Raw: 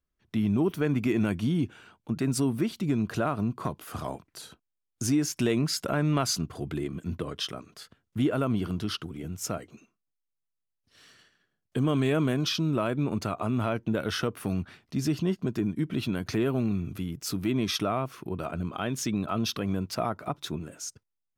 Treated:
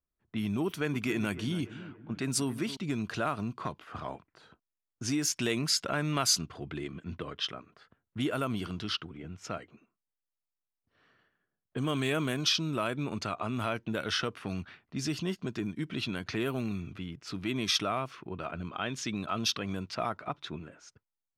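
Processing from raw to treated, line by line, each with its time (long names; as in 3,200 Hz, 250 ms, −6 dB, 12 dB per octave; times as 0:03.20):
0:00.65–0:02.77: delay with a low-pass on its return 282 ms, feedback 50%, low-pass 1,600 Hz, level −13 dB
whole clip: low-pass that shuts in the quiet parts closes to 1,000 Hz, open at −22 dBFS; tilt shelving filter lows −5.5 dB, about 1,100 Hz; level −1.5 dB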